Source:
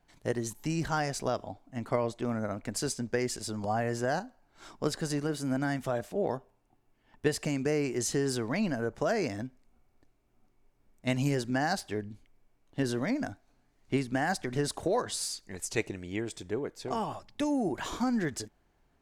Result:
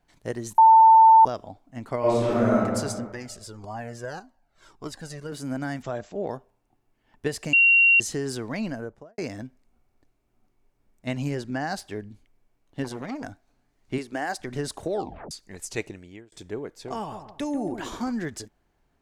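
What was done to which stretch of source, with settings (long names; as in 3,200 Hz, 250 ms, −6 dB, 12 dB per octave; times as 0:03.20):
0:00.58–0:01.25: beep over 893 Hz −9.5 dBFS
0:01.99–0:02.58: thrown reverb, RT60 1.7 s, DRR −11 dB
0:03.12–0:05.32: flanger whose copies keep moving one way falling 1.7 Hz
0:05.82–0:06.29: linear-phase brick-wall low-pass 7,800 Hz
0:07.53–0:08.00: beep over 2,750 Hz −13.5 dBFS
0:08.67–0:09.18: fade out and dull
0:11.07–0:11.73: high-shelf EQ 6,200 Hz −8.5 dB
0:12.84–0:13.24: saturating transformer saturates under 720 Hz
0:13.98–0:14.40: low shelf with overshoot 250 Hz −10 dB, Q 1.5
0:14.91: tape stop 0.40 s
0:15.84–0:16.32: fade out
0:16.98–0:18.12: delay with a low-pass on its return 140 ms, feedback 33%, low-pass 1,500 Hz, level −8 dB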